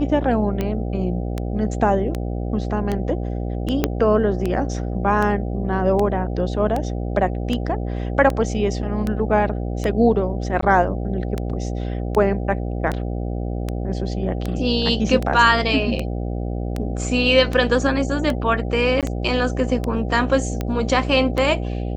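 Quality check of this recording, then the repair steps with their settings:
buzz 60 Hz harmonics 13 -25 dBFS
tick 78 rpm -11 dBFS
3.84 pop -4 dBFS
10.61–10.62 gap 14 ms
19.01–19.03 gap 17 ms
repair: de-click; de-hum 60 Hz, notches 13; interpolate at 10.61, 14 ms; interpolate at 19.01, 17 ms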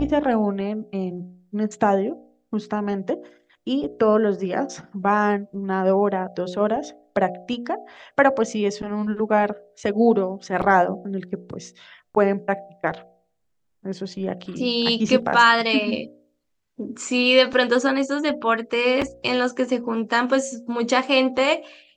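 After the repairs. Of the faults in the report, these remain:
3.84 pop

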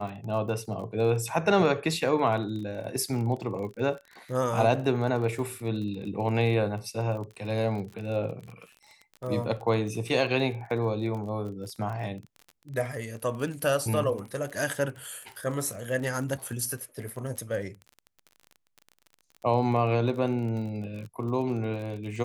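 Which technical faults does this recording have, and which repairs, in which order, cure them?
crackle 30/s -36 dBFS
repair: de-click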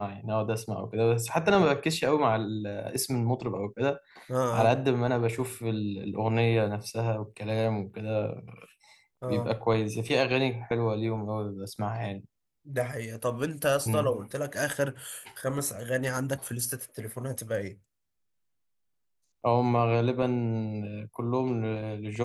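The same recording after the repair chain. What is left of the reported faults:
none

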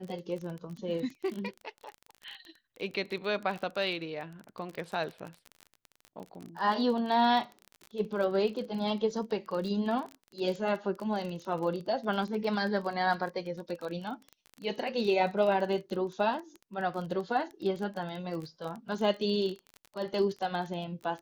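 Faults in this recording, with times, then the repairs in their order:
crackle 26/s -36 dBFS
2.3 gap 2.3 ms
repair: de-click; interpolate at 2.3, 2.3 ms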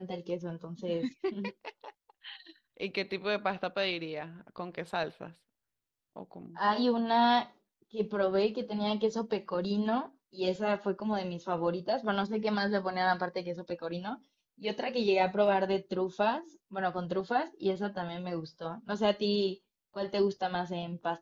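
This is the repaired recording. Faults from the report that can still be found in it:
none

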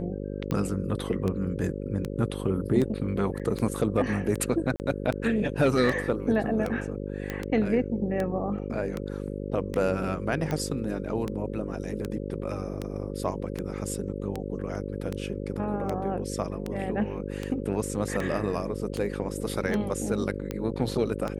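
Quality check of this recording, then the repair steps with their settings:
buzz 50 Hz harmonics 11 -34 dBFS
tick 78 rpm -17 dBFS
3.39–3.4 gap 7.2 ms
4.76–4.8 gap 39 ms
7.3 pop -17 dBFS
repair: de-click; de-hum 50 Hz, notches 11; interpolate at 3.39, 7.2 ms; interpolate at 4.76, 39 ms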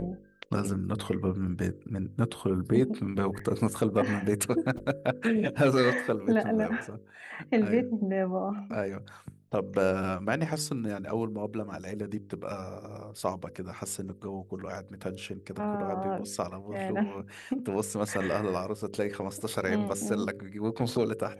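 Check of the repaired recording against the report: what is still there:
none

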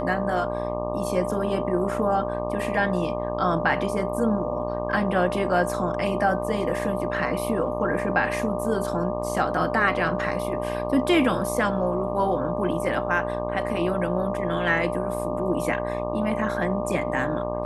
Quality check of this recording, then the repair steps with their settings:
buzz 60 Hz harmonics 20 -31 dBFS
tone 600 Hz -30 dBFS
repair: de-hum 60 Hz, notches 20; notch 600 Hz, Q 30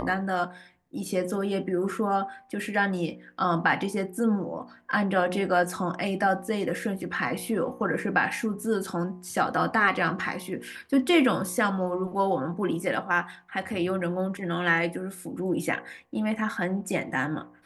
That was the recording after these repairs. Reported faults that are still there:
none

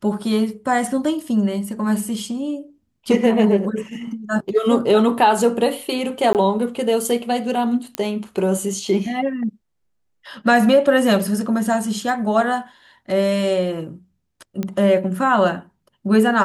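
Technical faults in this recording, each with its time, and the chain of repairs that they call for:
6.33–6.35 gap 18 ms
7.95 pop -8 dBFS
14.63 pop -13 dBFS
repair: de-click; interpolate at 6.33, 18 ms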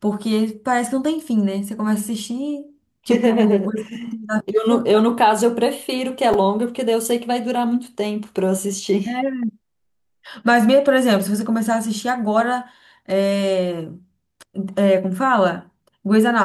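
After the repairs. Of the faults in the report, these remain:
none

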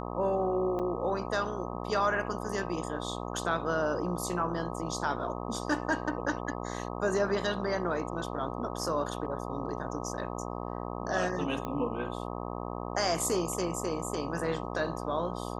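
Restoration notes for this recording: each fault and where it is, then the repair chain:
buzz 60 Hz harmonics 21 -37 dBFS
0.79–0.8 gap 6.5 ms
11.65 pop -22 dBFS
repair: de-click; de-hum 60 Hz, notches 21; interpolate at 0.79, 6.5 ms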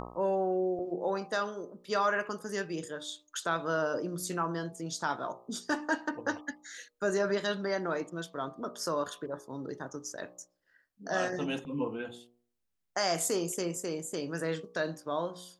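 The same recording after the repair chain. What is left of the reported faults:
none

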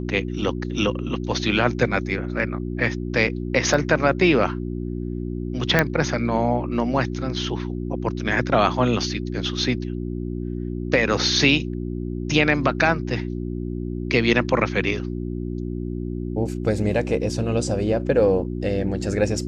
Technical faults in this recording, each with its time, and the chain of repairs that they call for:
hum 60 Hz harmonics 6 -28 dBFS
3.74 gap 3.9 ms
5.79 pop -3 dBFS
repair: de-click; de-hum 60 Hz, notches 6; interpolate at 3.74, 3.9 ms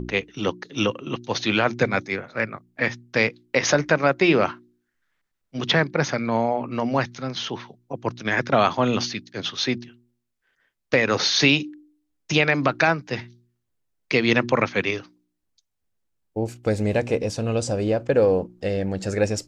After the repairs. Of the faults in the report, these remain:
none

